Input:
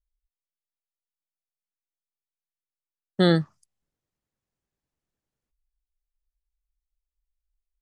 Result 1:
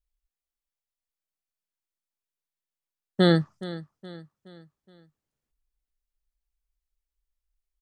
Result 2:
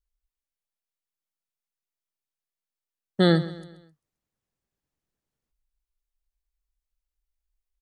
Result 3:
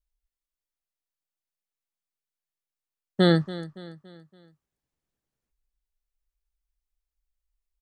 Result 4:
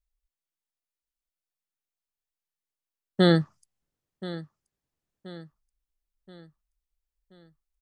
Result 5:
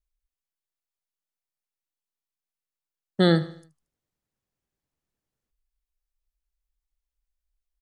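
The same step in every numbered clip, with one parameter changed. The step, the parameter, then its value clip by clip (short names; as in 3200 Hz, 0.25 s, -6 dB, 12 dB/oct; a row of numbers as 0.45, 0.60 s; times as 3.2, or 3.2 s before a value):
feedback echo, time: 420, 131, 283, 1028, 76 ms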